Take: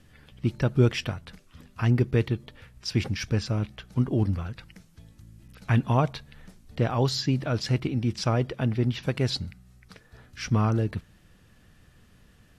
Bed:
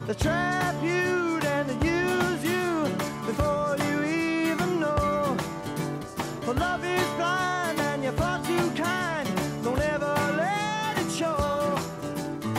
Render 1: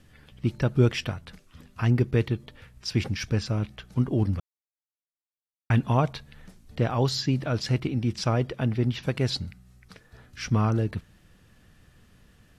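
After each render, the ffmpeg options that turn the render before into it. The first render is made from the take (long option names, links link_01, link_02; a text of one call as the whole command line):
ffmpeg -i in.wav -filter_complex "[0:a]asplit=3[link_01][link_02][link_03];[link_01]atrim=end=4.4,asetpts=PTS-STARTPTS,afade=type=out:start_time=4.396:duration=0.004:curve=hsin[link_04];[link_02]atrim=start=4.4:end=5.7,asetpts=PTS-STARTPTS,volume=0[link_05];[link_03]atrim=start=5.7,asetpts=PTS-STARTPTS,afade=type=in:duration=0.004:curve=hsin[link_06];[link_04][link_05][link_06]concat=n=3:v=0:a=1" out.wav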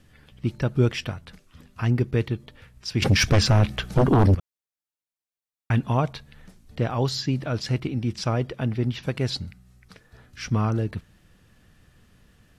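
ffmpeg -i in.wav -filter_complex "[0:a]asettb=1/sr,asplit=3[link_01][link_02][link_03];[link_01]atrim=end=3.024[link_04];[link_02]atrim=start=3.02:end=4.35,asetpts=PTS-STARTPTS,afade=type=in:duration=0.004:curve=qsin,afade=type=out:start_time=1.326:duration=0.004:curve=qsin,aeval=exprs='0.237*sin(PI/2*3.16*val(0)/0.237)':channel_layout=same[link_05];[link_03]atrim=start=4.346[link_06];[link_04][link_05]acrossfade=duration=0.004:curve1=hsin:curve2=qsin[link_07];[link_07][link_06]acrossfade=duration=0.004:curve1=qsin:curve2=hsin" out.wav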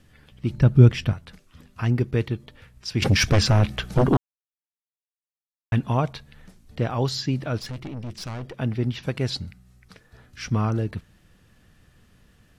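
ffmpeg -i in.wav -filter_complex "[0:a]asettb=1/sr,asplit=3[link_01][link_02][link_03];[link_01]atrim=end=0.504[link_04];[link_02]atrim=start=0.5:end=1.13,asetpts=PTS-STARTPTS,afade=type=in:duration=0.004:curve=qsin,afade=type=out:start_time=0.626:duration=0.004:curve=qsin,bass=frequency=250:gain=10,treble=frequency=4000:gain=-2[link_05];[link_03]atrim=start=1.126[link_06];[link_04][link_05]acrossfade=duration=0.004:curve1=hsin:curve2=qsin[link_07];[link_07][link_06]acrossfade=duration=0.004:curve1=qsin:curve2=hsin,asettb=1/sr,asplit=3[link_08][link_09][link_10];[link_08]atrim=end=7.584[link_11];[link_09]atrim=start=7.58:end=8.58,asetpts=PTS-STARTPTS,afade=type=in:duration=0.004:curve=qsin,afade=type=out:start_time=0.996:duration=0.004:curve=qsin,aeval=exprs='(tanh(31.6*val(0)+0.5)-tanh(0.5))/31.6':channel_layout=same[link_12];[link_10]atrim=start=8.576[link_13];[link_11][link_12]acrossfade=duration=0.004:curve1=hsin:curve2=qsin[link_14];[link_14][link_13]acrossfade=duration=0.004:curve1=qsin:curve2=hsin,asplit=3[link_15][link_16][link_17];[link_15]atrim=end=4.17,asetpts=PTS-STARTPTS,afade=type=out:start_time=4.166:duration=0.004:curve=hsin[link_18];[link_16]atrim=start=4.17:end=5.72,asetpts=PTS-STARTPTS,volume=0[link_19];[link_17]atrim=start=5.72,asetpts=PTS-STARTPTS,afade=type=in:duration=0.004:curve=hsin[link_20];[link_18][link_19][link_20]concat=n=3:v=0:a=1" out.wav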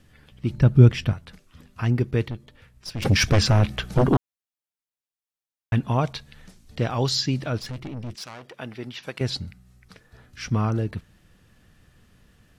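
ffmpeg -i in.wav -filter_complex "[0:a]asettb=1/sr,asplit=3[link_01][link_02][link_03];[link_01]atrim=end=2.304[link_04];[link_02]atrim=start=2.3:end=3.05,asetpts=PTS-STARTPTS,afade=type=in:duration=0.004:curve=qsin,afade=type=out:start_time=0.746:duration=0.004:curve=qsin,aeval=exprs='(tanh(20*val(0)+0.6)-tanh(0.6))/20':channel_layout=same[link_05];[link_03]atrim=start=3.046[link_06];[link_04][link_05]acrossfade=duration=0.004:curve1=hsin:curve2=qsin[link_07];[link_07][link_06]acrossfade=duration=0.004:curve1=qsin:curve2=hsin,asettb=1/sr,asplit=3[link_08][link_09][link_10];[link_08]atrim=end=6.014[link_11];[link_09]atrim=start=6.01:end=7.5,asetpts=PTS-STARTPTS,afade=type=in:duration=0.004:curve=qsin,afade=type=out:start_time=1.486:duration=0.004:curve=qsin,equalizer=frequency=5600:width=0.51:gain=6[link_12];[link_10]atrim=start=7.496[link_13];[link_11][link_12]acrossfade=duration=0.004:curve1=hsin:curve2=qsin[link_14];[link_14][link_13]acrossfade=duration=0.004:curve1=qsin:curve2=hsin,asettb=1/sr,asplit=3[link_15][link_16][link_17];[link_15]atrim=end=8.154[link_18];[link_16]atrim=start=8.15:end=9.21,asetpts=PTS-STARTPTS,afade=type=in:duration=0.004:curve=qsin,afade=type=out:start_time=1.056:duration=0.004:curve=qsin,highpass=frequency=720:poles=1[link_19];[link_17]atrim=start=9.206[link_20];[link_18][link_19]acrossfade=duration=0.004:curve1=hsin:curve2=qsin[link_21];[link_21][link_20]acrossfade=duration=0.004:curve1=qsin:curve2=hsin" out.wav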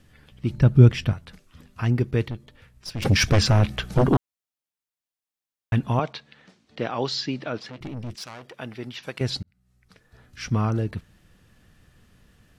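ffmpeg -i in.wav -filter_complex "[0:a]asettb=1/sr,asplit=3[link_01][link_02][link_03];[link_01]atrim=end=5.994[link_04];[link_02]atrim=start=5.99:end=7.81,asetpts=PTS-STARTPTS,afade=type=in:duration=0.004:curve=qsin,afade=type=out:start_time=1.816:duration=0.004:curve=qsin,highpass=230,lowpass=4200[link_05];[link_03]atrim=start=7.806[link_06];[link_04][link_05]acrossfade=duration=0.004:curve1=hsin:curve2=qsin[link_07];[link_07][link_06]acrossfade=duration=0.004:curve1=qsin:curve2=hsin,asplit=2[link_08][link_09];[link_08]atrim=end=9.43,asetpts=PTS-STARTPTS,afade=type=out:start_time=9.426:duration=0.004:curve=hsin[link_10];[link_09]atrim=start=9.43,asetpts=PTS-STARTPTS,afade=type=in:duration=0.99[link_11];[link_10][link_11]concat=n=2:v=0:a=1" out.wav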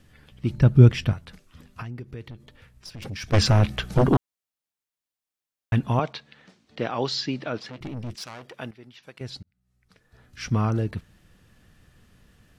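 ffmpeg -i in.wav -filter_complex "[0:a]asplit=3[link_01][link_02][link_03];[link_01]afade=type=out:start_time=1.81:duration=0.02[link_04];[link_02]acompressor=threshold=-38dB:ratio=3:attack=3.2:release=140:knee=1:detection=peak,afade=type=in:start_time=1.81:duration=0.02,afade=type=out:start_time=3.32:duration=0.02[link_05];[link_03]afade=type=in:start_time=3.32:duration=0.02[link_06];[link_04][link_05][link_06]amix=inputs=3:normalize=0,asplit=2[link_07][link_08];[link_07]atrim=end=8.71,asetpts=PTS-STARTPTS,afade=type=out:start_time=8.706:duration=0.004:curve=hsin:silence=0.237137[link_09];[link_08]atrim=start=8.71,asetpts=PTS-STARTPTS,afade=type=in:duration=1.76:curve=qua:silence=0.237137[link_10];[link_09][link_10]concat=n=2:v=0:a=1" out.wav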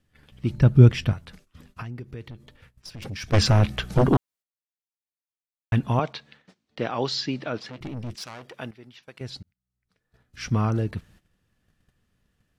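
ffmpeg -i in.wav -af "agate=range=-14dB:threshold=-52dB:ratio=16:detection=peak" out.wav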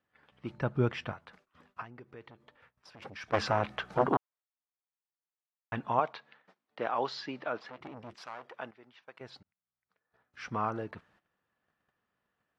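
ffmpeg -i in.wav -af "bandpass=frequency=1000:width_type=q:width=1.1:csg=0" out.wav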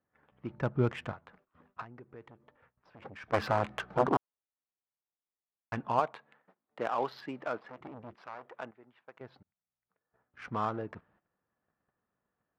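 ffmpeg -i in.wav -af "adynamicsmooth=sensitivity=5.5:basefreq=1700" out.wav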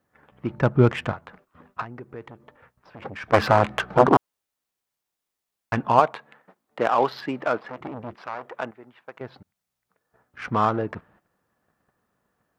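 ffmpeg -i in.wav -af "volume=11.5dB" out.wav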